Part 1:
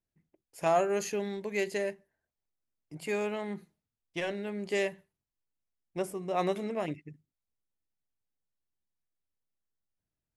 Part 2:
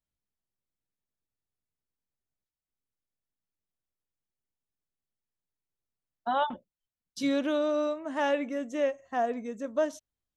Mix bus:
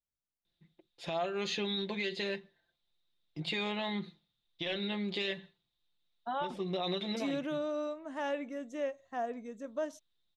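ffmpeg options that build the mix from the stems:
-filter_complex "[0:a]aecho=1:1:5.8:0.68,acompressor=threshold=-36dB:ratio=3,lowpass=f=3.7k:t=q:w=12,adelay=450,volume=2.5dB[a];[1:a]volume=-7.5dB,asplit=2[b][c];[c]apad=whole_len=477052[d];[a][d]sidechaincompress=threshold=-41dB:ratio=4:attack=10:release=138[e];[e][b]amix=inputs=2:normalize=0,alimiter=level_in=1.5dB:limit=-24dB:level=0:latency=1:release=15,volume=-1.5dB"

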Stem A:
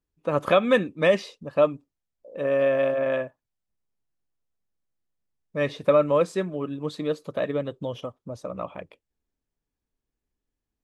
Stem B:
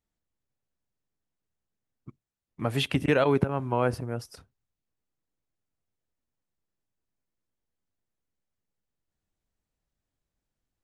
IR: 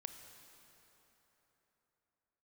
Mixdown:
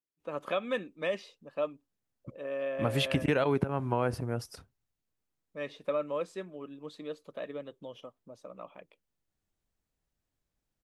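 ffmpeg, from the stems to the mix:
-filter_complex "[0:a]highpass=200,equalizer=f=2.9k:t=o:w=0.77:g=3,volume=-12.5dB[a];[1:a]acompressor=threshold=-25dB:ratio=2.5,adelay=200,volume=0dB[b];[a][b]amix=inputs=2:normalize=0"

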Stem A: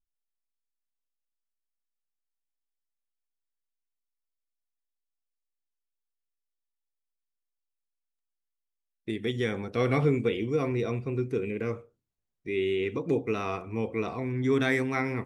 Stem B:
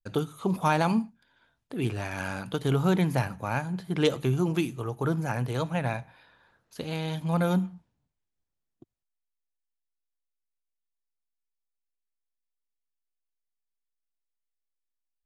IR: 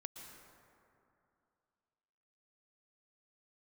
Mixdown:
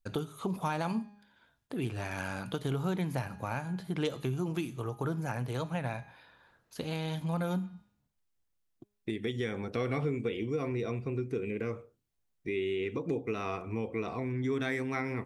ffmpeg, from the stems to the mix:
-filter_complex "[0:a]volume=2dB[a];[1:a]bandreject=f=205.4:t=h:w=4,bandreject=f=410.8:t=h:w=4,bandreject=f=616.2:t=h:w=4,bandreject=f=821.6:t=h:w=4,bandreject=f=1.027k:t=h:w=4,bandreject=f=1.2324k:t=h:w=4,bandreject=f=1.4378k:t=h:w=4,bandreject=f=1.6432k:t=h:w=4,bandreject=f=1.8486k:t=h:w=4,bandreject=f=2.054k:t=h:w=4,bandreject=f=2.2594k:t=h:w=4,bandreject=f=2.4648k:t=h:w=4,bandreject=f=2.6702k:t=h:w=4,bandreject=f=2.8756k:t=h:w=4,bandreject=f=3.081k:t=h:w=4,bandreject=f=3.2864k:t=h:w=4,bandreject=f=3.4918k:t=h:w=4,bandreject=f=3.6972k:t=h:w=4,bandreject=f=3.9026k:t=h:w=4,bandreject=f=4.108k:t=h:w=4,bandreject=f=4.3134k:t=h:w=4,bandreject=f=4.5188k:t=h:w=4,bandreject=f=4.7242k:t=h:w=4,bandreject=f=4.9296k:t=h:w=4,bandreject=f=5.135k:t=h:w=4,bandreject=f=5.3404k:t=h:w=4,bandreject=f=5.5458k:t=h:w=4,bandreject=f=5.7512k:t=h:w=4,bandreject=f=5.9566k:t=h:w=4,bandreject=f=6.162k:t=h:w=4,bandreject=f=6.3674k:t=h:w=4,bandreject=f=6.5728k:t=h:w=4,volume=0dB[b];[a][b]amix=inputs=2:normalize=0,acompressor=threshold=-33dB:ratio=2.5"

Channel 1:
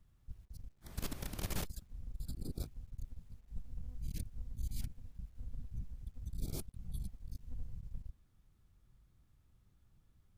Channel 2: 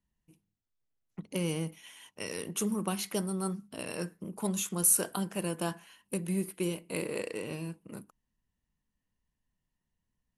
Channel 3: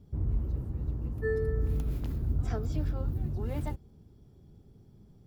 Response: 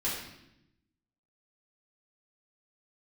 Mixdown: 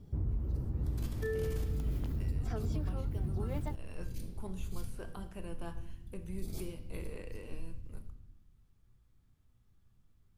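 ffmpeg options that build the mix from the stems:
-filter_complex "[0:a]volume=-7dB,asplit=2[a][b];[b]volume=-4dB[c];[1:a]acrossover=split=3000[d][e];[e]acompressor=threshold=-49dB:ratio=4:attack=1:release=60[f];[d][f]amix=inputs=2:normalize=0,volume=-13.5dB,asplit=2[g][h];[h]volume=-13dB[i];[2:a]volume=2dB[j];[3:a]atrim=start_sample=2205[k];[c][i]amix=inputs=2:normalize=0[l];[l][k]afir=irnorm=-1:irlink=0[m];[a][g][j][m]amix=inputs=4:normalize=0,alimiter=level_in=2dB:limit=-24dB:level=0:latency=1:release=307,volume=-2dB"

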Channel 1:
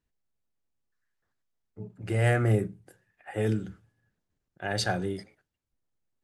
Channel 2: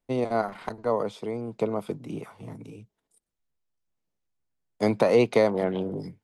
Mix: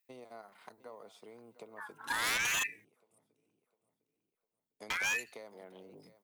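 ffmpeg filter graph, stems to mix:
-filter_complex "[0:a]highpass=140,equalizer=f=380:t=o:w=0.34:g=11.5,aeval=exprs='val(0)*sin(2*PI*1700*n/s+1700*0.3/0.76*sin(2*PI*0.76*n/s))':c=same,volume=-5dB,asplit=3[a][b][c];[a]atrim=end=2.85,asetpts=PTS-STARTPTS,afade=t=out:st=2.846:d=0.004:c=hsin[d];[b]atrim=start=2.85:end=4.9,asetpts=PTS-STARTPTS,volume=0[e];[c]atrim=start=4.9,asetpts=PTS-STARTPTS,afade=t=in:d=0.004:c=hsin[f];[d][e][f]concat=n=3:v=0:a=1[g];[1:a]highshelf=f=4.3k:g=-8,acompressor=threshold=-30dB:ratio=4,volume=-15dB,asplit=2[h][i];[i]volume=-16.5dB,aecho=0:1:704|1408|2112|2816|3520:1|0.39|0.152|0.0593|0.0231[j];[g][h][j]amix=inputs=3:normalize=0,aemphasis=mode=production:type=riaa,aeval=exprs='0.0473*(abs(mod(val(0)/0.0473+3,4)-2)-1)':c=same"

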